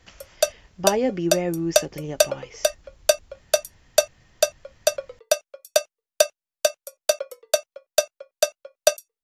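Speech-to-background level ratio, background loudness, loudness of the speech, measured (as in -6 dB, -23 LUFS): -2.5 dB, -24.5 LUFS, -27.0 LUFS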